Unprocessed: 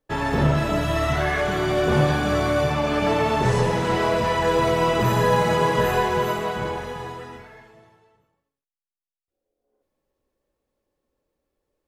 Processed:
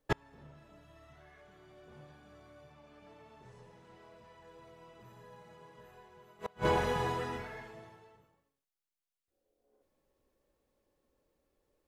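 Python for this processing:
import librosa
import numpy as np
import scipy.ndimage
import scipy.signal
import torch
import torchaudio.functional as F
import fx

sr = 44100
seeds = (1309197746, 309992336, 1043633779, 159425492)

y = fx.gate_flip(x, sr, shuts_db=-16.0, range_db=-36)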